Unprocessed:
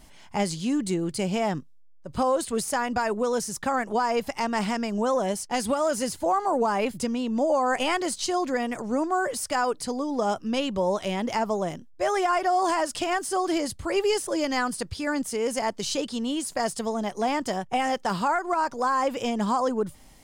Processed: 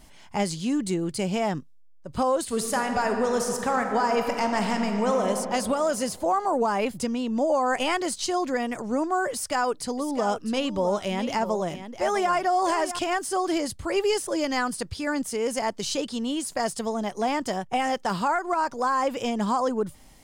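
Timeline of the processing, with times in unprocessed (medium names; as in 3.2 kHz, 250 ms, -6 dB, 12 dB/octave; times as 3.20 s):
2.41–5.27 s: reverb throw, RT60 2.6 s, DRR 3.5 dB
9.32–12.99 s: delay 654 ms -11 dB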